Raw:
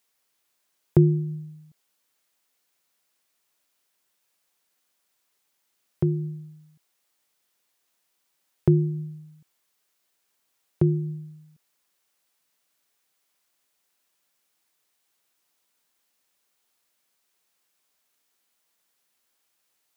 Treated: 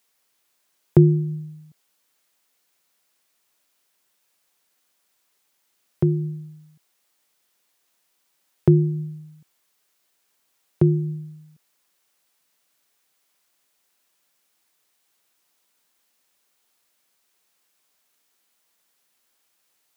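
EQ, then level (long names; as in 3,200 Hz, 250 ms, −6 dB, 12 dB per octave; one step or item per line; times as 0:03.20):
high-pass filter 84 Hz
+4.0 dB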